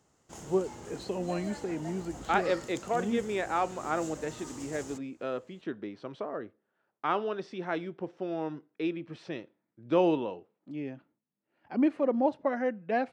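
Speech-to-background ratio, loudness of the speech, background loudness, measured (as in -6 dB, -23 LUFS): 12.5 dB, -32.5 LUFS, -45.0 LUFS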